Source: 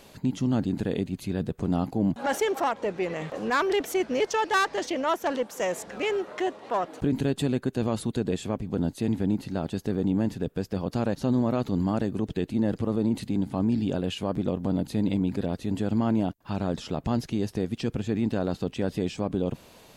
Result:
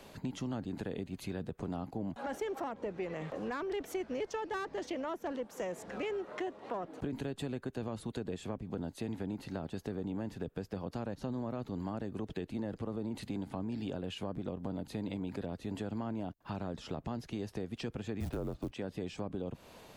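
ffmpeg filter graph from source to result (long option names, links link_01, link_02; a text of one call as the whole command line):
ffmpeg -i in.wav -filter_complex "[0:a]asettb=1/sr,asplit=3[link_01][link_02][link_03];[link_01]atrim=end=18.204[link_04];[link_02]atrim=start=18.2:end=18.72,asetpts=PTS-STARTPTS,afade=type=in:duration=0.004:curve=qsin,afade=type=out:start_time=0.516:duration=0.004:curve=qsin,tiltshelf=frequency=1400:gain=8.5,acrusher=bits=8:mode=log:mix=0:aa=0.000001,afreqshift=-140[link_05];[link_03]atrim=start=18.716[link_06];[link_04][link_05]acrossfade=duration=0.004:curve1=hsin:curve2=qsin[link_07];[link_07][link_06]acrossfade=duration=0.004:curve1=qsin:curve2=hsin,highshelf=frequency=2100:gain=-10.5,acrossover=split=81|410[link_08][link_09][link_10];[link_08]acompressor=threshold=-51dB:ratio=4[link_11];[link_09]acompressor=threshold=-39dB:ratio=4[link_12];[link_10]acompressor=threshold=-42dB:ratio=4[link_13];[link_11][link_12][link_13]amix=inputs=3:normalize=0,tiltshelf=frequency=970:gain=-3,volume=1dB" out.wav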